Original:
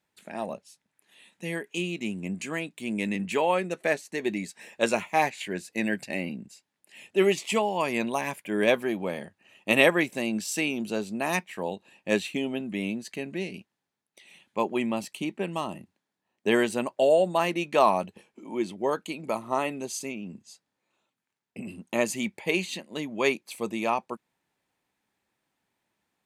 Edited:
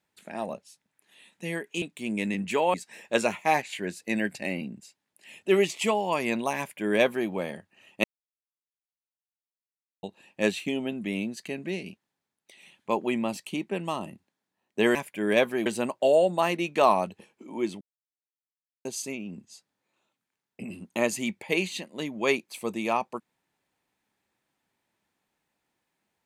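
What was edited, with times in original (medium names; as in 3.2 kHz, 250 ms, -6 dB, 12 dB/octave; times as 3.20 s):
1.82–2.63 s: delete
3.55–4.42 s: delete
8.26–8.97 s: copy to 16.63 s
9.72–11.71 s: mute
18.78–19.82 s: mute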